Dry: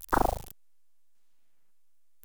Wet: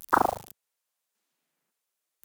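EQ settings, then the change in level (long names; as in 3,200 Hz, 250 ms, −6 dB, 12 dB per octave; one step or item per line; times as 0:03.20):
high-pass filter 130 Hz 12 dB per octave
dynamic equaliser 1,200 Hz, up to +7 dB, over −41 dBFS, Q 1.4
0.0 dB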